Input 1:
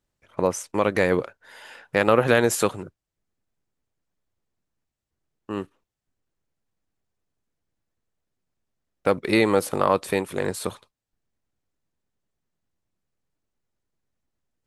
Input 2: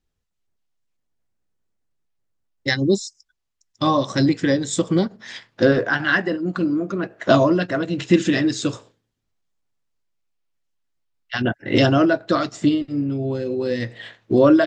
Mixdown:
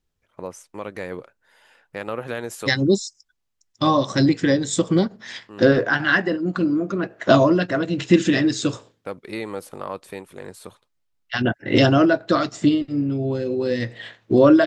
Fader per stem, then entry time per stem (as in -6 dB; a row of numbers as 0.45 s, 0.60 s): -11.0 dB, +0.5 dB; 0.00 s, 0.00 s